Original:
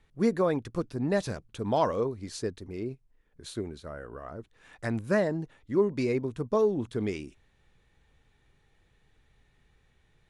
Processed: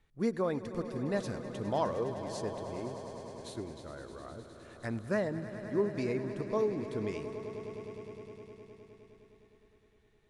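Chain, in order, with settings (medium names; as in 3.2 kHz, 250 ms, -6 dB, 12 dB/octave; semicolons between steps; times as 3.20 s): echo with a slow build-up 103 ms, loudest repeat 5, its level -15 dB; trim -6 dB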